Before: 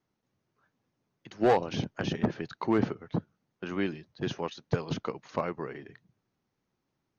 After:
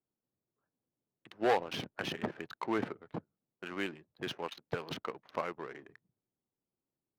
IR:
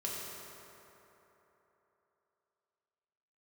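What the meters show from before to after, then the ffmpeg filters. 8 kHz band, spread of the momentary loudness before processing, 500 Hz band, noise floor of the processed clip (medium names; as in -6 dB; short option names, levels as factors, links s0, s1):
no reading, 11 LU, -6.0 dB, under -85 dBFS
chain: -af "crystalizer=i=6:c=0,adynamicsmooth=sensitivity=7.5:basefreq=570,bass=f=250:g=-8,treble=f=4000:g=-10,volume=0.501"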